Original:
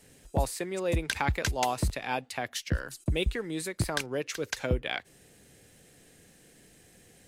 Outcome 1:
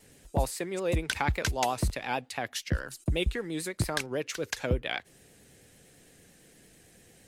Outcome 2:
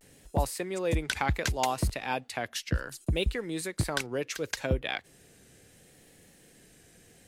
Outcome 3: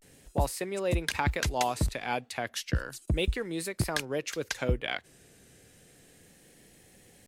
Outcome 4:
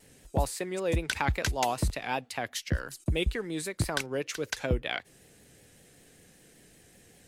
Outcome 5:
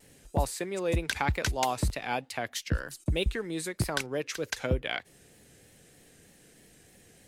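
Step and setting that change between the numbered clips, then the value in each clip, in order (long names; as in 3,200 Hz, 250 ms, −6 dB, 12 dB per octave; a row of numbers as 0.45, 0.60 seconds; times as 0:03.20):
pitch vibrato, speed: 8.9, 0.69, 0.33, 5.2, 3.2 Hertz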